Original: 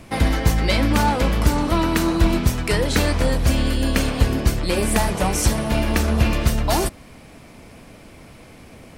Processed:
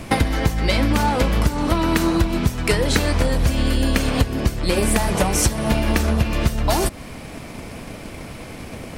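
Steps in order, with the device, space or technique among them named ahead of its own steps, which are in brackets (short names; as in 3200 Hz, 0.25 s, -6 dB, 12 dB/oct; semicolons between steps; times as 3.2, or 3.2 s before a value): drum-bus smash (transient shaper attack +6 dB, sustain 0 dB; compressor 12:1, threshold -22 dBFS, peak gain reduction 17.5 dB; soft clip -13 dBFS, distortion -24 dB); gain +8.5 dB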